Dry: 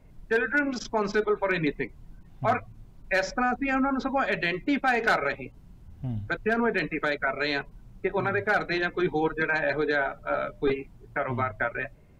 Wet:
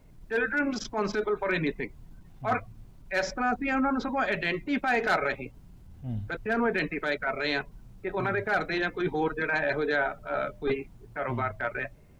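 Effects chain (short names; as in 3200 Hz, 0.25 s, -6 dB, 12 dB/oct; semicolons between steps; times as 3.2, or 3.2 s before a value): transient shaper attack -8 dB, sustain 0 dB; requantised 12-bit, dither none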